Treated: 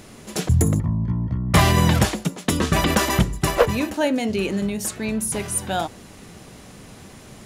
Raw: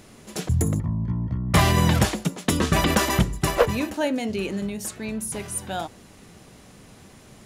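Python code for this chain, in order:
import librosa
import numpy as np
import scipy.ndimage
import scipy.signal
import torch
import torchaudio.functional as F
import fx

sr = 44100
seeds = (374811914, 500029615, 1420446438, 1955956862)

y = fx.rider(x, sr, range_db=3, speed_s=2.0)
y = y * librosa.db_to_amplitude(2.5)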